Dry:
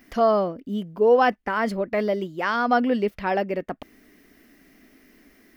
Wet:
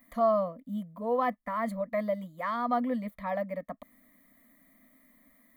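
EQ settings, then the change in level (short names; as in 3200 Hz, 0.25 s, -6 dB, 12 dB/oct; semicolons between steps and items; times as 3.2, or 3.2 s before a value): low shelf 130 Hz -10 dB; fixed phaser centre 550 Hz, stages 8; fixed phaser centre 1500 Hz, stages 6; 0.0 dB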